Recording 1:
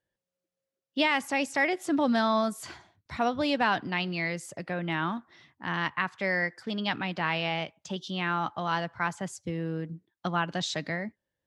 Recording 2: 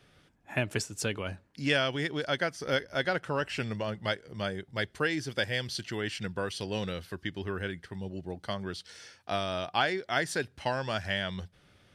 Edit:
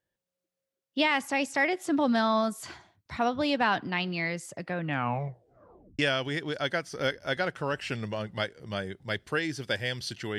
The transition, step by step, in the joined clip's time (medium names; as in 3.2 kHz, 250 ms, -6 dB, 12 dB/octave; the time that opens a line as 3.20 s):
recording 1
4.77 s: tape stop 1.22 s
5.99 s: go over to recording 2 from 1.67 s